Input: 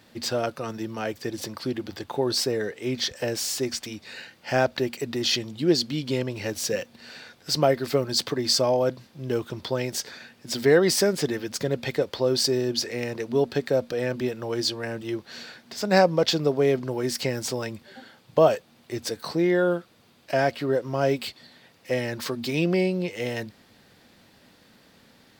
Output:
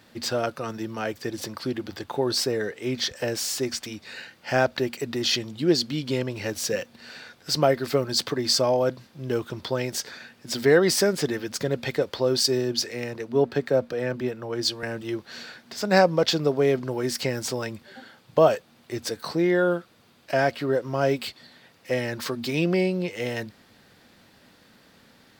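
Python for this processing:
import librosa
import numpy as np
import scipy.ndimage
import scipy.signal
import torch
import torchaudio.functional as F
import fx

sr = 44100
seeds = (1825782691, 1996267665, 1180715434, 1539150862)

y = fx.peak_eq(x, sr, hz=1400.0, db=2.5, octaves=0.77)
y = fx.band_widen(y, sr, depth_pct=40, at=(12.4, 14.83))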